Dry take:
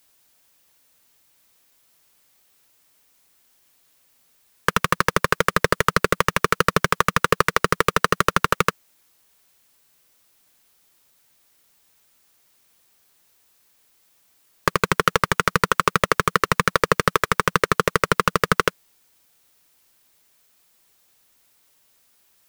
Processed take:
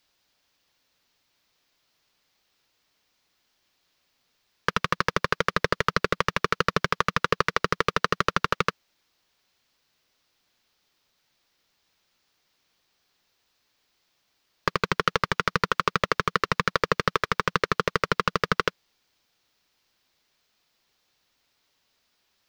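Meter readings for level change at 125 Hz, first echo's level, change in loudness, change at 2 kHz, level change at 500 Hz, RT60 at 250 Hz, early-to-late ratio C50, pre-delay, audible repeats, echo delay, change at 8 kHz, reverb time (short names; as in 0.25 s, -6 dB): -5.5 dB, none, -5.0 dB, -5.0 dB, -5.5 dB, none, none, none, none, none, -11.0 dB, none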